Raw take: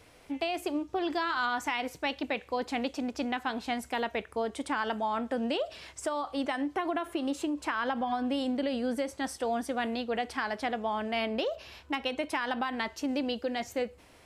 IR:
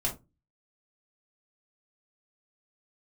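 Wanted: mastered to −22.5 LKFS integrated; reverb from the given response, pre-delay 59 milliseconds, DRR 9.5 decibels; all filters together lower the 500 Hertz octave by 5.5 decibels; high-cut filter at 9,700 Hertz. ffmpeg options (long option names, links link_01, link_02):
-filter_complex "[0:a]lowpass=9700,equalizer=frequency=500:width_type=o:gain=-7,asplit=2[link_01][link_02];[1:a]atrim=start_sample=2205,adelay=59[link_03];[link_02][link_03]afir=irnorm=-1:irlink=0,volume=-15dB[link_04];[link_01][link_04]amix=inputs=2:normalize=0,volume=11.5dB"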